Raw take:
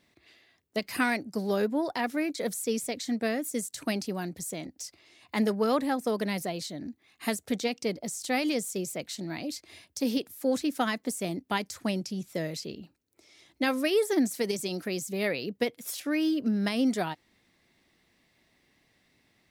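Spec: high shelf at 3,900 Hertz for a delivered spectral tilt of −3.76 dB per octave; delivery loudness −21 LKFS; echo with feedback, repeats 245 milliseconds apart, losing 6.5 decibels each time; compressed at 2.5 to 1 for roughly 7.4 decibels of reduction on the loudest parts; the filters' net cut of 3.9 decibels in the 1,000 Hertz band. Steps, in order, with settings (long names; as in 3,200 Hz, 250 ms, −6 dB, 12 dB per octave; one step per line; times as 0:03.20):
parametric band 1,000 Hz −6 dB
high-shelf EQ 3,900 Hz +4.5 dB
downward compressor 2.5 to 1, threshold −33 dBFS
repeating echo 245 ms, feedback 47%, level −6.5 dB
level +13.5 dB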